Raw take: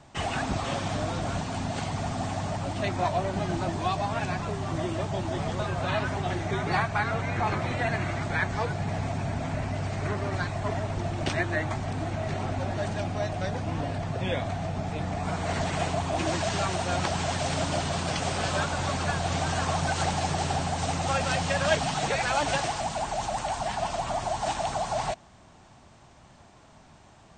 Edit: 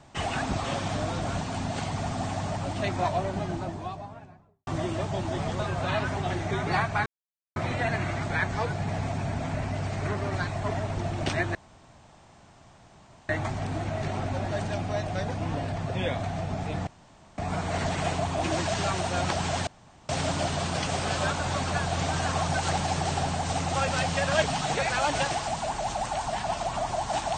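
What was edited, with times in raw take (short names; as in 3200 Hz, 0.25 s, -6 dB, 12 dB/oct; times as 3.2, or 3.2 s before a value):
2.96–4.67 studio fade out
7.06–7.56 mute
11.55 insert room tone 1.74 s
15.13 insert room tone 0.51 s
17.42 insert room tone 0.42 s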